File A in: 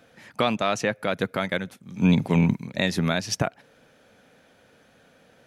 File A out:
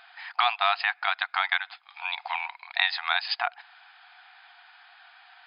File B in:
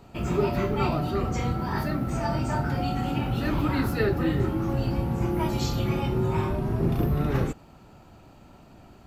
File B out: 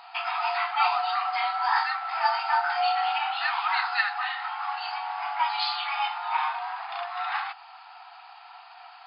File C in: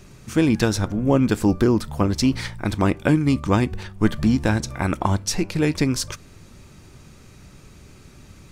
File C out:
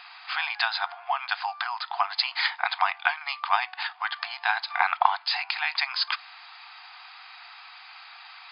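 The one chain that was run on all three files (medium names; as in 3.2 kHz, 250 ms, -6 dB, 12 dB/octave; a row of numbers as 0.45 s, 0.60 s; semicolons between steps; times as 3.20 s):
compression 2:1, threshold -27 dBFS; brick-wall FIR band-pass 690–5100 Hz; normalise loudness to -27 LUFS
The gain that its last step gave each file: +8.5 dB, +11.5 dB, +10.5 dB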